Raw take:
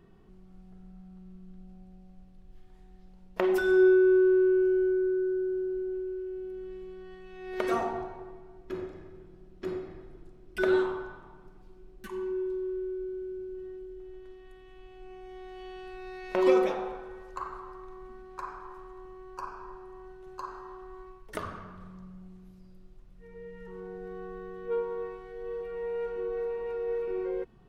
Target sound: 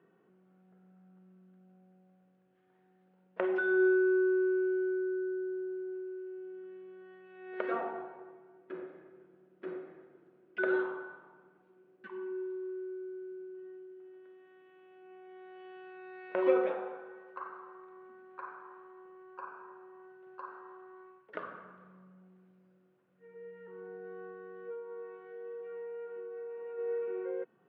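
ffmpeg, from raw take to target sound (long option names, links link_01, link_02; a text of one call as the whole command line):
ffmpeg -i in.wav -filter_complex "[0:a]asplit=3[link_01][link_02][link_03];[link_01]afade=type=out:start_time=24.32:duration=0.02[link_04];[link_02]acompressor=threshold=-37dB:ratio=10,afade=type=in:start_time=24.32:duration=0.02,afade=type=out:start_time=26.77:duration=0.02[link_05];[link_03]afade=type=in:start_time=26.77:duration=0.02[link_06];[link_04][link_05][link_06]amix=inputs=3:normalize=0,highpass=frequency=180:width=0.5412,highpass=frequency=180:width=1.3066,equalizer=frequency=220:width_type=q:width=4:gain=-4,equalizer=frequency=520:width_type=q:width=4:gain=7,equalizer=frequency=1500:width_type=q:width=4:gain=7,lowpass=frequency=2900:width=0.5412,lowpass=frequency=2900:width=1.3066,volume=-7dB" out.wav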